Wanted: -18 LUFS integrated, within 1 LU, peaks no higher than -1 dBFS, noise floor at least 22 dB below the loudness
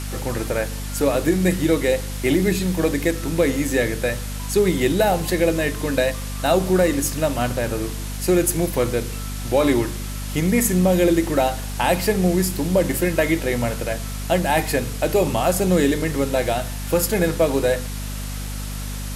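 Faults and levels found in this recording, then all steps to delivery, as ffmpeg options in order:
hum 50 Hz; highest harmonic 250 Hz; hum level -27 dBFS; noise floor -29 dBFS; noise floor target -43 dBFS; loudness -21.0 LUFS; peak level -5.5 dBFS; loudness target -18.0 LUFS
-> -af "bandreject=f=50:t=h:w=4,bandreject=f=100:t=h:w=4,bandreject=f=150:t=h:w=4,bandreject=f=200:t=h:w=4,bandreject=f=250:t=h:w=4"
-af "afftdn=nr=14:nf=-29"
-af "volume=1.41"

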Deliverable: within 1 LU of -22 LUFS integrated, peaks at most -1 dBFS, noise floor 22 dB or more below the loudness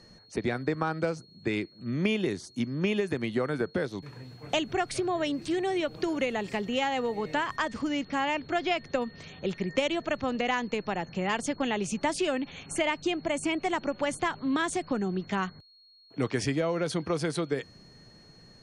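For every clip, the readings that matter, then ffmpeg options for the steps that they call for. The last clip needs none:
steady tone 4.3 kHz; tone level -56 dBFS; loudness -30.5 LUFS; peak level -13.0 dBFS; loudness target -22.0 LUFS
-> -af "bandreject=f=4300:w=30"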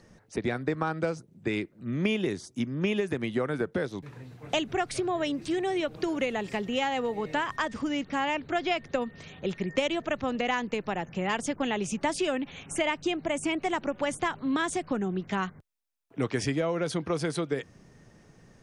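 steady tone not found; loudness -30.5 LUFS; peak level -13.0 dBFS; loudness target -22.0 LUFS
-> -af "volume=2.66"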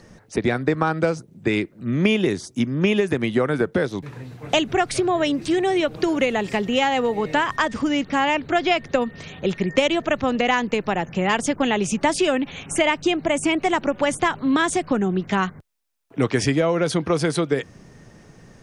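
loudness -22.0 LUFS; peak level -4.5 dBFS; noise floor -50 dBFS

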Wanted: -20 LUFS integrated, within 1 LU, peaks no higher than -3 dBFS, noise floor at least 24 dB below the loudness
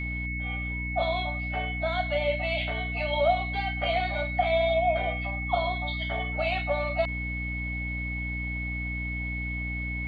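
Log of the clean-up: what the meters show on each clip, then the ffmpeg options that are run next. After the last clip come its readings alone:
hum 60 Hz; highest harmonic 300 Hz; hum level -31 dBFS; steady tone 2.2 kHz; tone level -33 dBFS; loudness -28.5 LUFS; peak level -12.0 dBFS; loudness target -20.0 LUFS
-> -af "bandreject=f=60:t=h:w=4,bandreject=f=120:t=h:w=4,bandreject=f=180:t=h:w=4,bandreject=f=240:t=h:w=4,bandreject=f=300:t=h:w=4"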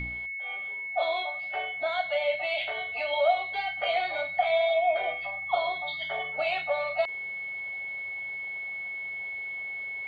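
hum not found; steady tone 2.2 kHz; tone level -33 dBFS
-> -af "bandreject=f=2200:w=30"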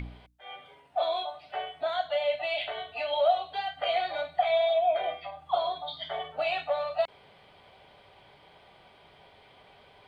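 steady tone not found; loudness -30.0 LUFS; peak level -13.5 dBFS; loudness target -20.0 LUFS
-> -af "volume=3.16"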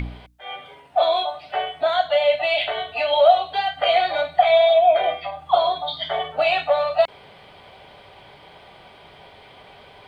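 loudness -20.0 LUFS; peak level -3.5 dBFS; noise floor -48 dBFS

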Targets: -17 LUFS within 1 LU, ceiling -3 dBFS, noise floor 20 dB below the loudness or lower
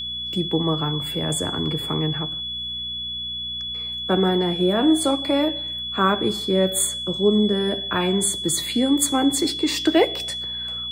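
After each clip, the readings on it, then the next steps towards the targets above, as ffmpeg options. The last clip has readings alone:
hum 60 Hz; highest harmonic 240 Hz; hum level -42 dBFS; steady tone 3.4 kHz; tone level -27 dBFS; loudness -21.5 LUFS; peak level -6.0 dBFS; loudness target -17.0 LUFS
-> -af "bandreject=f=60:t=h:w=4,bandreject=f=120:t=h:w=4,bandreject=f=180:t=h:w=4,bandreject=f=240:t=h:w=4"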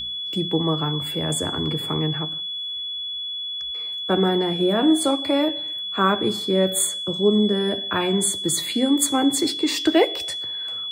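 hum not found; steady tone 3.4 kHz; tone level -27 dBFS
-> -af "bandreject=f=3400:w=30"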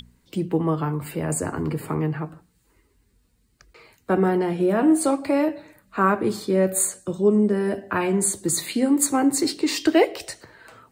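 steady tone not found; loudness -22.5 LUFS; peak level -6.5 dBFS; loudness target -17.0 LUFS
-> -af "volume=1.88,alimiter=limit=0.708:level=0:latency=1"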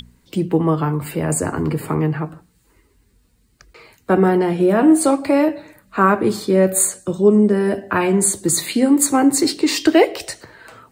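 loudness -17.0 LUFS; peak level -3.0 dBFS; noise floor -59 dBFS

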